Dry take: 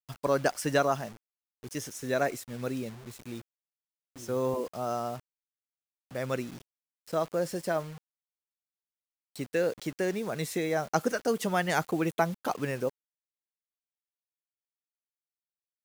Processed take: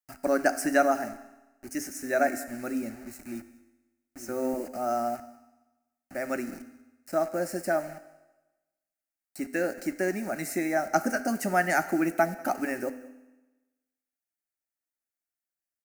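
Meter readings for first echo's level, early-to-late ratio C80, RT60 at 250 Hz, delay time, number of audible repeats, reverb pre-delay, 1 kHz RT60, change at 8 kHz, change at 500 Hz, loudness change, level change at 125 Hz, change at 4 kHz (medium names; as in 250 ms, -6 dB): -22.0 dB, 15.0 dB, 1.1 s, 192 ms, 1, 4 ms, 1.1 s, +2.5 dB, +1.0 dB, +2.0 dB, -6.5 dB, -4.5 dB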